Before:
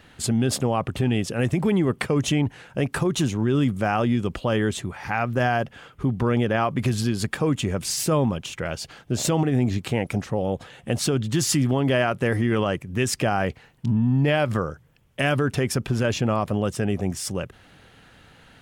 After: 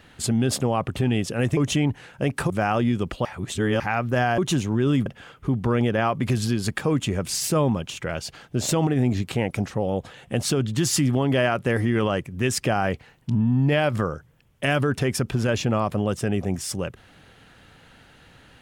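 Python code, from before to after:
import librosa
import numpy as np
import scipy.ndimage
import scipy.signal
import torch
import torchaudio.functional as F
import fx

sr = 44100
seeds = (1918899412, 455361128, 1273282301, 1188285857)

y = fx.edit(x, sr, fx.cut(start_s=1.57, length_s=0.56),
    fx.move(start_s=3.06, length_s=0.68, to_s=5.62),
    fx.reverse_span(start_s=4.49, length_s=0.55), tone=tone)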